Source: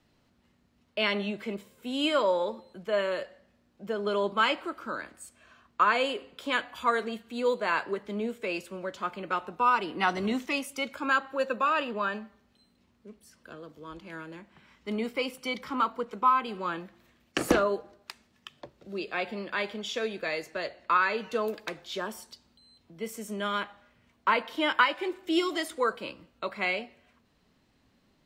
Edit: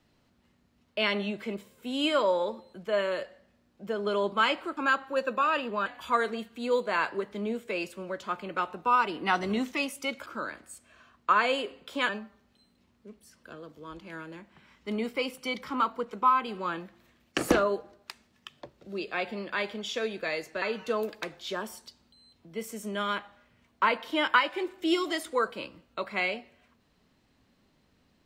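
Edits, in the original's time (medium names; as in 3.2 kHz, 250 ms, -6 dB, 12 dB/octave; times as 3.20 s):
4.77–6.60 s: swap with 11.00–12.09 s
20.62–21.07 s: delete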